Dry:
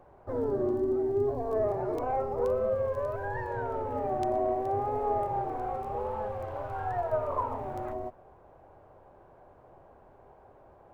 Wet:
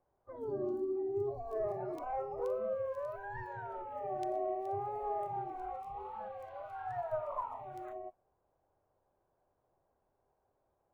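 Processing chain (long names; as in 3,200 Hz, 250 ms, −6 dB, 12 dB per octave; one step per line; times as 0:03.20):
noise reduction from a noise print of the clip's start 16 dB
level −7 dB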